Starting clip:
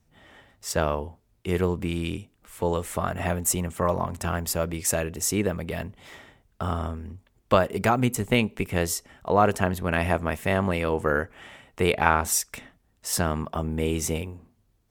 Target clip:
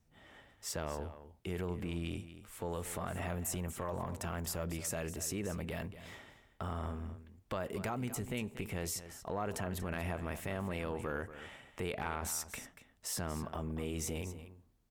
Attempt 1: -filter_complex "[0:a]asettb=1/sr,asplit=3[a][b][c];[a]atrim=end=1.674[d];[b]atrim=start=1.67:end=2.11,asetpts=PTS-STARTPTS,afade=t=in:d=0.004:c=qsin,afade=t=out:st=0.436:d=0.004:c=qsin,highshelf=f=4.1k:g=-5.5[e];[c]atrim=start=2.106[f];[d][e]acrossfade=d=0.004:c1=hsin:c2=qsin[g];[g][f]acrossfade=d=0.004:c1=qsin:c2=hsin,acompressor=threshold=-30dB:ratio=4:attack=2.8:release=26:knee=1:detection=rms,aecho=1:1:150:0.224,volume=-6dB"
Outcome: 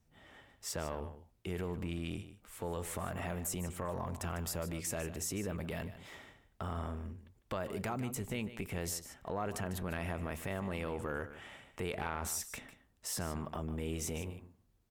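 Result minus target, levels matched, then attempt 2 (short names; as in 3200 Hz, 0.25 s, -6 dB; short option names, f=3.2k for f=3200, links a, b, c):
echo 85 ms early
-filter_complex "[0:a]asettb=1/sr,asplit=3[a][b][c];[a]atrim=end=1.674[d];[b]atrim=start=1.67:end=2.11,asetpts=PTS-STARTPTS,afade=t=in:d=0.004:c=qsin,afade=t=out:st=0.436:d=0.004:c=qsin,highshelf=f=4.1k:g=-5.5[e];[c]atrim=start=2.106[f];[d][e]acrossfade=d=0.004:c1=hsin:c2=qsin[g];[g][f]acrossfade=d=0.004:c1=qsin:c2=hsin,acompressor=threshold=-30dB:ratio=4:attack=2.8:release=26:knee=1:detection=rms,aecho=1:1:235:0.224,volume=-6dB"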